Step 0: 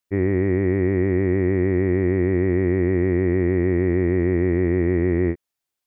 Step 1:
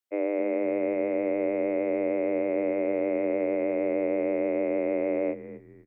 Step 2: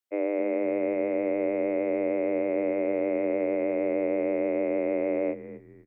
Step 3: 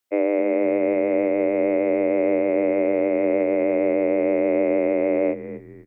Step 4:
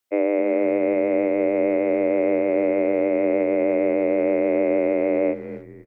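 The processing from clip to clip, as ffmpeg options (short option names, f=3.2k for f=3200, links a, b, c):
-filter_complex "[0:a]afreqshift=210,asplit=4[a][b][c][d];[b]adelay=252,afreqshift=-90,volume=-14dB[e];[c]adelay=504,afreqshift=-180,volume=-24.2dB[f];[d]adelay=756,afreqshift=-270,volume=-34.3dB[g];[a][e][f][g]amix=inputs=4:normalize=0,volume=-7.5dB"
-af anull
-af "alimiter=limit=-19.5dB:level=0:latency=1:release=299,volume=8.5dB"
-filter_complex "[0:a]asplit=2[a][b];[b]adelay=310,highpass=300,lowpass=3.4k,asoftclip=type=hard:threshold=-19.5dB,volume=-22dB[c];[a][c]amix=inputs=2:normalize=0"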